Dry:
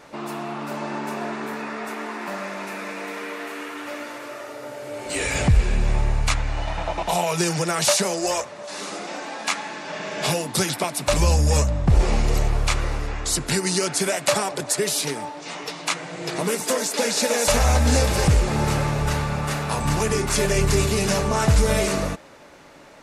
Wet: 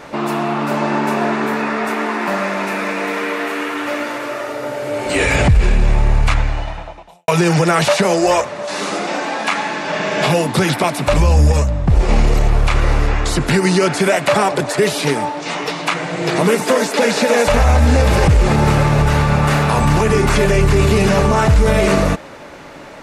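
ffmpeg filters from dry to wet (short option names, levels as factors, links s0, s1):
-filter_complex "[0:a]asplit=4[s0][s1][s2][s3];[s0]atrim=end=7.28,asetpts=PTS-STARTPTS,afade=t=out:st=6.23:d=1.05:c=qua[s4];[s1]atrim=start=7.28:end=11.522,asetpts=PTS-STARTPTS,afade=t=in:d=0.004:c=hsin[s5];[s2]atrim=start=11.518:end=12.092,asetpts=PTS-STARTPTS,volume=0.422[s6];[s3]atrim=start=12.088[s7];[s4][s5]concat=n=2:v=0:a=1[s8];[s8][s6]acrossfade=d=0.004:c1=hsin:c2=hsin[s9];[s9][s7]acrossfade=d=0.004:c1=hsin:c2=hsin,acrossover=split=3300[s10][s11];[s11]acompressor=threshold=0.0251:ratio=4:attack=1:release=60[s12];[s10][s12]amix=inputs=2:normalize=0,bass=f=250:g=1,treble=f=4000:g=-5,alimiter=level_in=5.62:limit=0.891:release=50:level=0:latency=1,volume=0.668"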